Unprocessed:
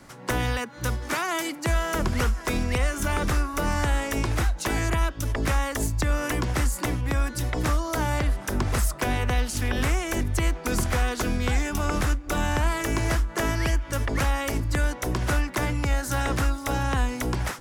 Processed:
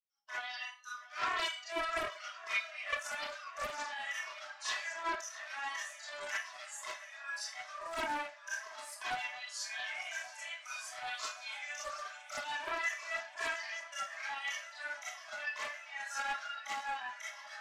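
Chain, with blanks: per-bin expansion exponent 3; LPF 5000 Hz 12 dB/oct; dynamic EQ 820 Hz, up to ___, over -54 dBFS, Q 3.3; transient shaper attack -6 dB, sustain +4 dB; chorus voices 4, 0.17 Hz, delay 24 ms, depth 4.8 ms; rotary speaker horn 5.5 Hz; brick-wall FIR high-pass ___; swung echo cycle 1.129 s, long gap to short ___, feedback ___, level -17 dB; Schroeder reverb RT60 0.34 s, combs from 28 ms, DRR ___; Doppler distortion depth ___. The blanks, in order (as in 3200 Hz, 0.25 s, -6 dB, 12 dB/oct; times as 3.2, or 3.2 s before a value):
-6 dB, 590 Hz, 1.5:1, 68%, -8 dB, 0.34 ms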